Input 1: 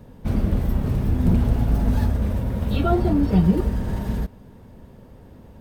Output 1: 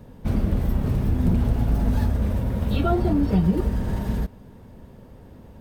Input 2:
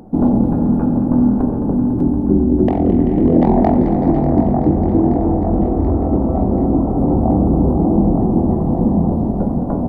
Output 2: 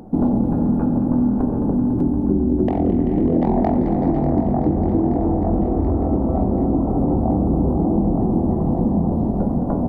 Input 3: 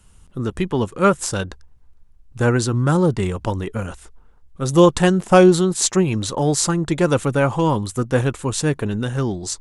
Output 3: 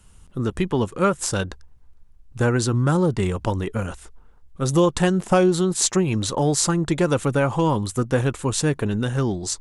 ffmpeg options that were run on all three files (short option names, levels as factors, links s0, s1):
-af "acompressor=threshold=0.158:ratio=2.5"